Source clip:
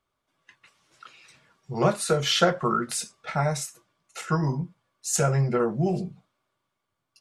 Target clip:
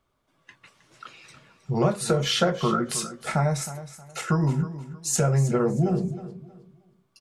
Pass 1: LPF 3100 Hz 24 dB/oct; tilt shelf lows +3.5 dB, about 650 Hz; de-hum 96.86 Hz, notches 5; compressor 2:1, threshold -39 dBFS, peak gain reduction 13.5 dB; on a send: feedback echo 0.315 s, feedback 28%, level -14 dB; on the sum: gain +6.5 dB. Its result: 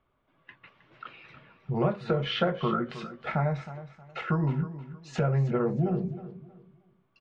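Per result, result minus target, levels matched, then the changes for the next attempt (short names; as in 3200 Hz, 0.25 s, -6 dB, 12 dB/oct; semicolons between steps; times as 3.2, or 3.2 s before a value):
compressor: peak gain reduction +4 dB; 4000 Hz band -3.0 dB
change: compressor 2:1, threshold -31 dBFS, peak gain reduction 9.5 dB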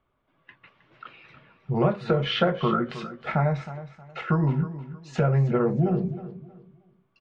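4000 Hz band -3.0 dB
remove: LPF 3100 Hz 24 dB/oct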